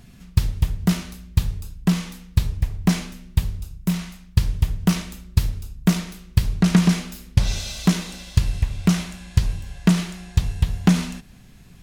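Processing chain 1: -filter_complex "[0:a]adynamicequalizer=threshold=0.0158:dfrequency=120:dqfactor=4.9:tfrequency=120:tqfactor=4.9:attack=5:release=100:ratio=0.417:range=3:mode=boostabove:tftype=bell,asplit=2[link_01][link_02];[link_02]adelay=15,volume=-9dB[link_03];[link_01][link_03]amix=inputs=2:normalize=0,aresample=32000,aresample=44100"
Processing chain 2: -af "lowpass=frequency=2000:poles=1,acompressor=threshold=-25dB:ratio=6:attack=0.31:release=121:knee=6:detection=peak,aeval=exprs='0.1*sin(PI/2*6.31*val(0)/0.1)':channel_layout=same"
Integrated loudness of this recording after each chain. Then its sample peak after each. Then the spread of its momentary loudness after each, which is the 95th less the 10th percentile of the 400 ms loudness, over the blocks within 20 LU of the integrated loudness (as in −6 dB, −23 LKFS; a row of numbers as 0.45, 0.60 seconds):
−23.0, −24.5 LKFS; −1.5, −20.0 dBFS; 8, 3 LU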